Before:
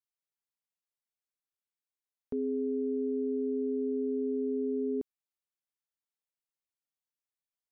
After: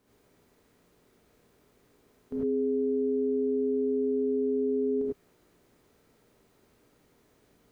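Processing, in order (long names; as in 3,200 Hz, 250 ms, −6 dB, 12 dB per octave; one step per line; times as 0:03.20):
compressor on every frequency bin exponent 0.6
brickwall limiter −35 dBFS, peak gain reduction 10.5 dB
reverb whose tail is shaped and stops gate 120 ms rising, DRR −6.5 dB
level +7.5 dB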